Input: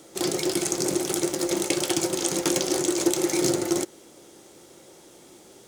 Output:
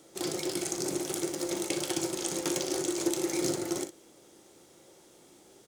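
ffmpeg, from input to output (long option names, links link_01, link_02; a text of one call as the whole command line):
ffmpeg -i in.wav -af "aecho=1:1:39|60:0.237|0.266,volume=-7.5dB" out.wav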